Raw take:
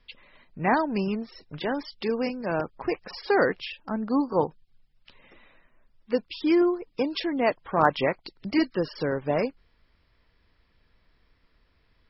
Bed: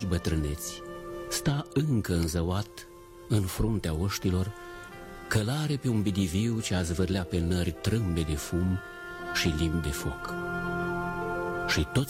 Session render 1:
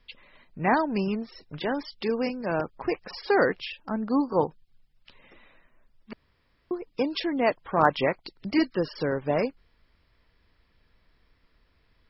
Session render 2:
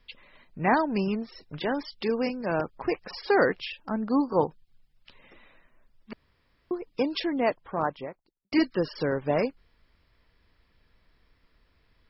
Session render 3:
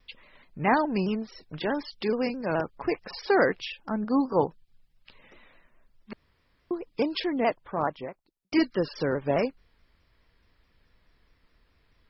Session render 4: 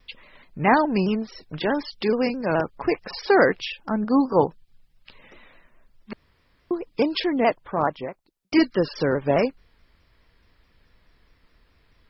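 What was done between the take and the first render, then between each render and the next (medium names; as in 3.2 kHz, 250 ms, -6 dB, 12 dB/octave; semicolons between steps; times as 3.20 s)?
6.13–6.71 s: room tone
7.13–8.52 s: studio fade out
vibrato with a chosen wave saw down 4.7 Hz, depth 100 cents
trim +5 dB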